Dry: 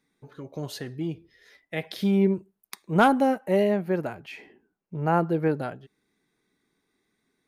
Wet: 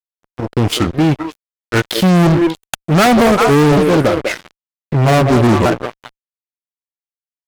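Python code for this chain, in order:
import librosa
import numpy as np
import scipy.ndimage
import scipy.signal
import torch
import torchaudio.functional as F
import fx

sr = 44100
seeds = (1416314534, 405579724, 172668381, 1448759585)

y = fx.pitch_ramps(x, sr, semitones=-6.5, every_ms=943)
y = fx.echo_stepped(y, sr, ms=197, hz=460.0, octaves=1.4, feedback_pct=70, wet_db=-6.5)
y = fx.fuzz(y, sr, gain_db=33.0, gate_db=-42.0)
y = y * librosa.db_to_amplitude(5.0)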